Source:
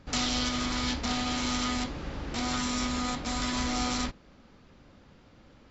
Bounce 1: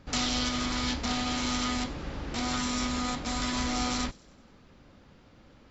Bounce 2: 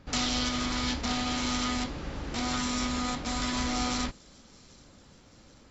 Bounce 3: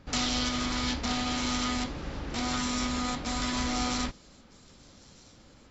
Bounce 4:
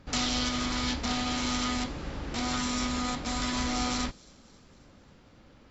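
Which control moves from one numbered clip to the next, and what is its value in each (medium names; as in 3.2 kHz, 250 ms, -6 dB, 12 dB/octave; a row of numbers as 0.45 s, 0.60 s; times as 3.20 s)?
feedback echo behind a high-pass, time: 95 ms, 783 ms, 1260 ms, 269 ms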